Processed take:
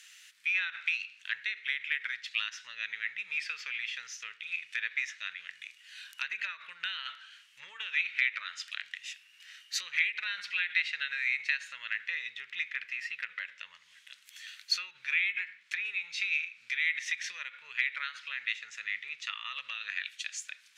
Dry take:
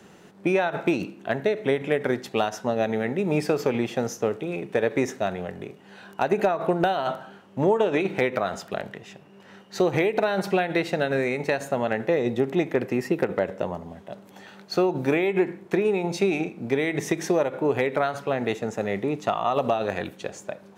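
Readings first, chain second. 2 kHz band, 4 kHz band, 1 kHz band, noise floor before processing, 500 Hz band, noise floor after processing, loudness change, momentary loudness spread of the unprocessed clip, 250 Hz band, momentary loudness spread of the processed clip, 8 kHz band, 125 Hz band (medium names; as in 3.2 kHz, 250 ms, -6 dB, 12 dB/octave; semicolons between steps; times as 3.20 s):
+1.0 dB, +2.0 dB, -21.5 dB, -50 dBFS, under -40 dB, -61 dBFS, -8.0 dB, 11 LU, under -40 dB, 16 LU, -3.5 dB, under -40 dB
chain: low-pass that closes with the level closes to 2.9 kHz, closed at -23.5 dBFS; inverse Chebyshev high-pass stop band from 790 Hz, stop band 50 dB; trim +6 dB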